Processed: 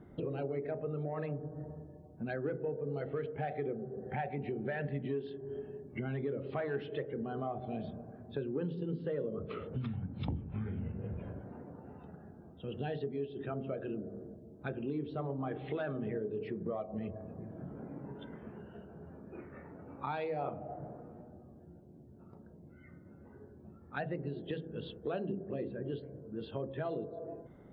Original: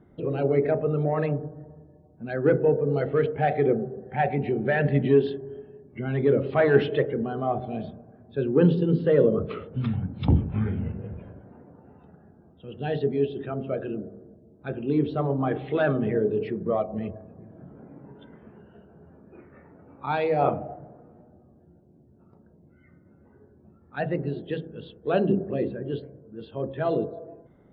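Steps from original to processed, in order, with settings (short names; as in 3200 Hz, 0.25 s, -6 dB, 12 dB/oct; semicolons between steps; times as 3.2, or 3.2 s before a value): compressor 5:1, threshold -37 dBFS, peak gain reduction 21.5 dB; gain +1 dB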